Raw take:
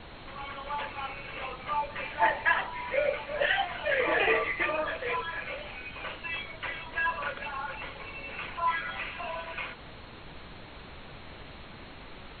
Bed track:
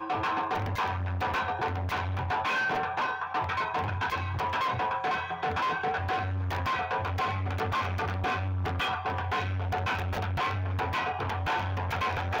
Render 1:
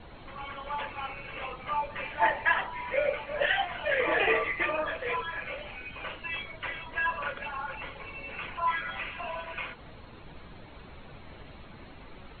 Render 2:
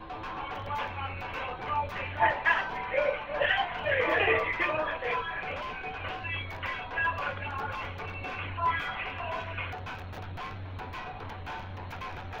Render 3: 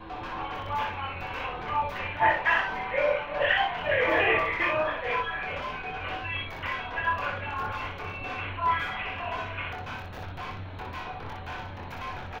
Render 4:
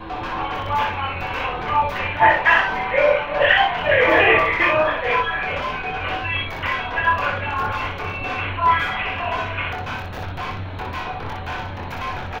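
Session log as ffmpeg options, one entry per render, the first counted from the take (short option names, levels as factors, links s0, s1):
-af "afftdn=nr=8:nf=-47"
-filter_complex "[1:a]volume=0.316[s0];[0:a][s0]amix=inputs=2:normalize=0"
-af "aecho=1:1:24|61:0.562|0.631"
-af "volume=2.82,alimiter=limit=0.794:level=0:latency=1"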